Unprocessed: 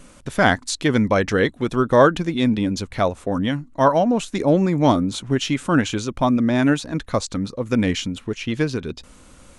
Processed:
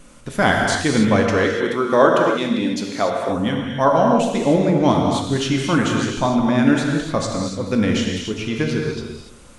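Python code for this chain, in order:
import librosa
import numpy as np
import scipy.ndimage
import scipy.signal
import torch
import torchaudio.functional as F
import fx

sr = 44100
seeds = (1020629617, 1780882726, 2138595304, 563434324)

y = fx.highpass(x, sr, hz=230.0, slope=12, at=(1.27, 3.29))
y = y + 10.0 ** (-16.0 / 20.0) * np.pad(y, (int(216 * sr / 1000.0), 0))[:len(y)]
y = fx.rev_gated(y, sr, seeds[0], gate_ms=320, shape='flat', drr_db=0.0)
y = y * 10.0 ** (-1.0 / 20.0)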